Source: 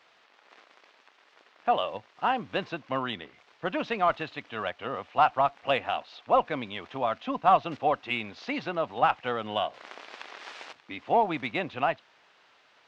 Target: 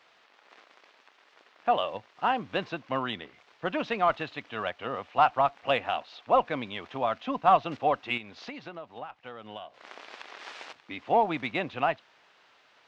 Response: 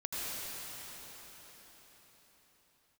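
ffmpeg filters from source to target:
-filter_complex "[0:a]asettb=1/sr,asplit=3[link_01][link_02][link_03];[link_01]atrim=end=8.174[link_04];[link_02]atrim=start=8.17:end=10.39,asetpts=PTS-STARTPTS,afade=type=in:duration=0.004:curve=qsin,afade=type=out:start_time=2.216:duration=0.004:curve=qsin,acompressor=threshold=-38dB:ratio=10[link_05];[link_03]atrim=start=10.386[link_06];[link_04][link_05]acrossfade=duration=0.004:curve1=hsin:curve2=qsin[link_07];[link_07][link_06]acrossfade=duration=0.004:curve1=qsin:curve2=hsin"

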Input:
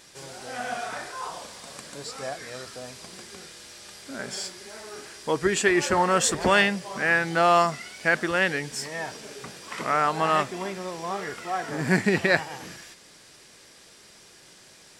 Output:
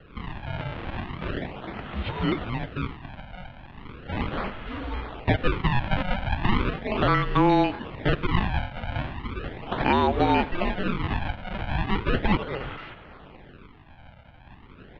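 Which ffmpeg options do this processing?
ffmpeg -i in.wav -filter_complex "[0:a]equalizer=frequency=410:width=0.33:gain=6,acrossover=split=240|810[link_01][link_02][link_03];[link_01]acompressor=threshold=-41dB:ratio=4[link_04];[link_02]acompressor=threshold=-28dB:ratio=4[link_05];[link_03]acompressor=threshold=-27dB:ratio=4[link_06];[link_04][link_05][link_06]amix=inputs=3:normalize=0,aresample=16000,acrusher=samples=12:mix=1:aa=0.000001:lfo=1:lforange=19.2:lforate=0.37,aresample=44100,aecho=1:1:93:0.0944,highpass=frequency=280:width_type=q:width=0.5412,highpass=frequency=280:width_type=q:width=1.307,lowpass=frequency=3600:width_type=q:width=0.5176,lowpass=frequency=3600:width_type=q:width=0.7071,lowpass=frequency=3600:width_type=q:width=1.932,afreqshift=-360,volume=5dB" out.wav

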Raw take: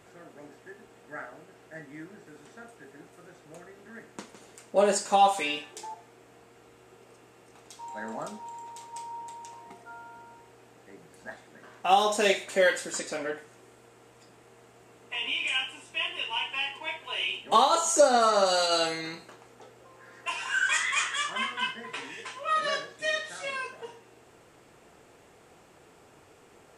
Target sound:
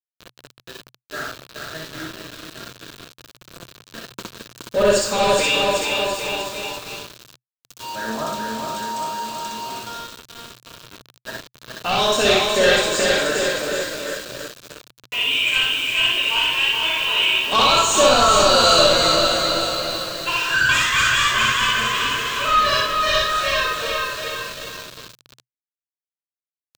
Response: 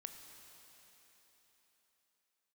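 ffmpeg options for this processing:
-filter_complex "[0:a]asplit=2[link_01][link_02];[link_02]highpass=frequency=720:poles=1,volume=19dB,asoftclip=type=tanh:threshold=-8dB[link_03];[link_01][link_03]amix=inputs=2:normalize=0,lowpass=frequency=4800:poles=1,volume=-6dB,lowshelf=frequency=150:gain=11,aecho=1:1:420|798|1138|1444|1720:0.631|0.398|0.251|0.158|0.1,asplit=2[link_04][link_05];[1:a]atrim=start_sample=2205,afade=type=out:start_time=0.41:duration=0.01,atrim=end_sample=18522,adelay=63[link_06];[link_05][link_06]afir=irnorm=-1:irlink=0,volume=5dB[link_07];[link_04][link_07]amix=inputs=2:normalize=0,aeval=exprs='val(0)*gte(abs(val(0)),0.0422)':channel_layout=same,equalizer=frequency=125:width_type=o:width=0.33:gain=10,equalizer=frequency=800:width_type=o:width=0.33:gain=-12,equalizer=frequency=2000:width_type=o:width=0.33:gain=-9,equalizer=frequency=4000:width_type=o:width=0.33:gain=5,equalizer=frequency=10000:width_type=o:width=0.33:gain=-7,volume=-1dB"

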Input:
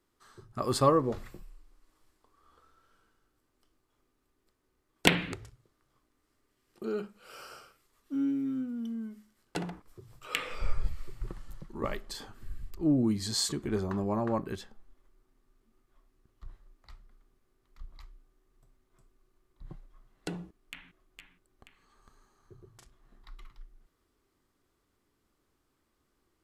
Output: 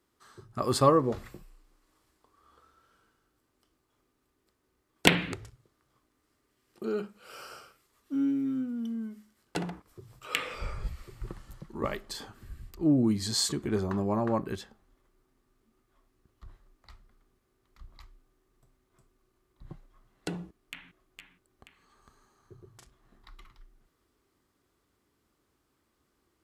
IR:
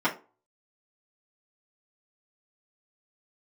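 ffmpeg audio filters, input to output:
-af "highpass=42,volume=2dB"

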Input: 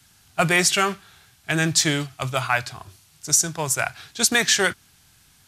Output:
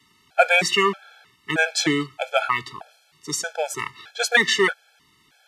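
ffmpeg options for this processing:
ffmpeg -i in.wav -filter_complex "[0:a]acrossover=split=210 4000:gain=0.112 1 0.178[link_01][link_02][link_03];[link_01][link_02][link_03]amix=inputs=3:normalize=0,afftfilt=real='re*gt(sin(2*PI*1.6*pts/sr)*(1-2*mod(floor(b*sr/1024/440),2)),0)':imag='im*gt(sin(2*PI*1.6*pts/sr)*(1-2*mod(floor(b*sr/1024/440),2)),0)':win_size=1024:overlap=0.75,volume=6dB" out.wav

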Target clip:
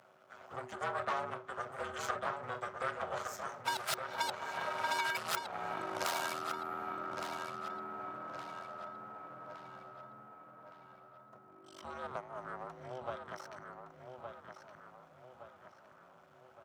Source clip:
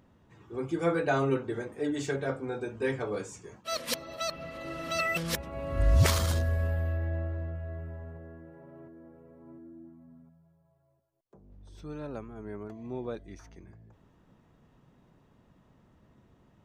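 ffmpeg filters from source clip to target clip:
ffmpeg -i in.wav -filter_complex "[0:a]aeval=exprs='max(val(0),0)':channel_layout=same,aeval=exprs='0.237*(cos(1*acos(clip(val(0)/0.237,-1,1)))-cos(1*PI/2))+0.106*(cos(3*acos(clip(val(0)/0.237,-1,1)))-cos(3*PI/2))+0.0668*(cos(4*acos(clip(val(0)/0.237,-1,1)))-cos(4*PI/2))':channel_layout=same,acontrast=89,equalizer=frequency=1700:width_type=o:width=0.38:gain=10.5,acompressor=threshold=-40dB:ratio=5,afreqshift=-380,highpass=frequency=97:width=0.5412,highpass=frequency=97:width=1.3066,lowshelf=frequency=430:width_type=q:width=3:gain=-11.5,asplit=2[link_01][link_02];[link_02]adelay=1165,lowpass=frequency=4300:poles=1,volume=-6dB,asplit=2[link_03][link_04];[link_04]adelay=1165,lowpass=frequency=4300:poles=1,volume=0.5,asplit=2[link_05][link_06];[link_06]adelay=1165,lowpass=frequency=4300:poles=1,volume=0.5,asplit=2[link_07][link_08];[link_08]adelay=1165,lowpass=frequency=4300:poles=1,volume=0.5,asplit=2[link_09][link_10];[link_10]adelay=1165,lowpass=frequency=4300:poles=1,volume=0.5,asplit=2[link_11][link_12];[link_12]adelay=1165,lowpass=frequency=4300:poles=1,volume=0.5[link_13];[link_01][link_03][link_05][link_07][link_09][link_11][link_13]amix=inputs=7:normalize=0,volume=7.5dB" out.wav

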